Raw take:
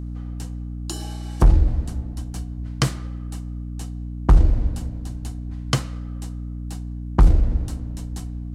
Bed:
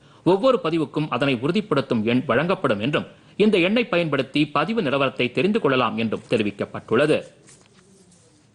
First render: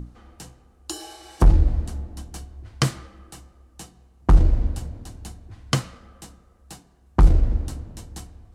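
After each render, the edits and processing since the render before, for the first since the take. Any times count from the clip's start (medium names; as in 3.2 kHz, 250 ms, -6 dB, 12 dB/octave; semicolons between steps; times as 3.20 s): hum notches 60/120/180/240/300 Hz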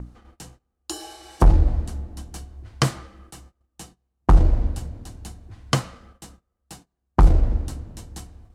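gate -47 dBFS, range -21 dB; dynamic bell 790 Hz, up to +5 dB, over -40 dBFS, Q 0.87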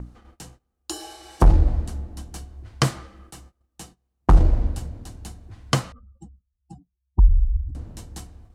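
5.92–7.75 s: spectral contrast enhancement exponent 3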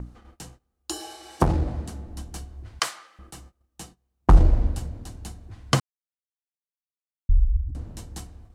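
1.01–2.07 s: high-pass 96 Hz; 2.79–3.19 s: high-pass 1 kHz; 5.80–7.29 s: mute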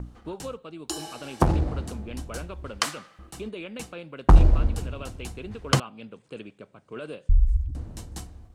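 add bed -19 dB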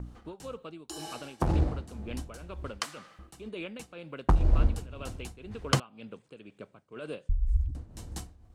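tremolo triangle 2 Hz, depth 80%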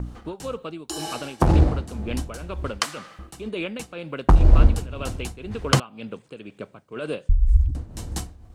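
trim +9.5 dB; peak limiter -3 dBFS, peak gain reduction 3 dB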